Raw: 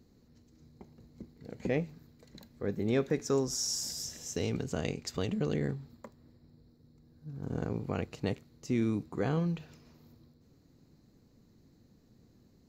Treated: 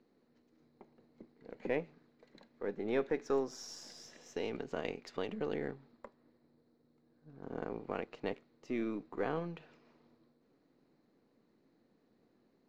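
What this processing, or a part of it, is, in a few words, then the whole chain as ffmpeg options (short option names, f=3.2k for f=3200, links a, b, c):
crystal radio: -af "highpass=330,lowpass=2.7k,aeval=exprs='if(lt(val(0),0),0.708*val(0),val(0))':c=same"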